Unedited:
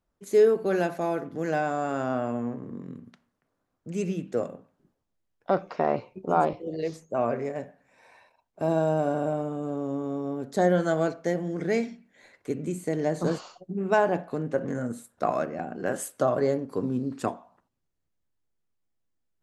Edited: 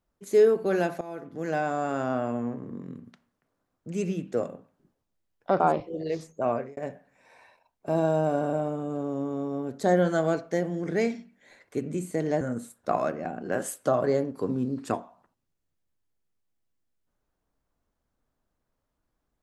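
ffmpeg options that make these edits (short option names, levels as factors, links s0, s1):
-filter_complex "[0:a]asplit=5[s0][s1][s2][s3][s4];[s0]atrim=end=1.01,asetpts=PTS-STARTPTS,afade=t=out:st=1.006:d=0.004:c=hsin:silence=0.149624[s5];[s1]atrim=start=1.01:end=5.602,asetpts=PTS-STARTPTS,afade=t=in:d=0.86:c=qsin:silence=0.149624[s6];[s2]atrim=start=6.328:end=7.5,asetpts=PTS-STARTPTS,afade=t=out:st=0.902:d=0.27[s7];[s3]atrim=start=7.5:end=13.142,asetpts=PTS-STARTPTS,afade=t=in:d=0.004:c=hsin[s8];[s4]atrim=start=14.748[s9];[s5][s6]concat=n=2:v=0:a=1[s10];[s7][s8]concat=n=2:v=0:a=1[s11];[s10][s11]acrossfade=d=0.004:c1=hsin:c2=hsin[s12];[s12][s9]acrossfade=d=0.004:c1=hsin:c2=hsin"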